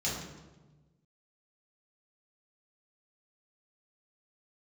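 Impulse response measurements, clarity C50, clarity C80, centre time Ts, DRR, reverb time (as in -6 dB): 1.5 dB, 4.5 dB, 61 ms, -7.0 dB, 1.2 s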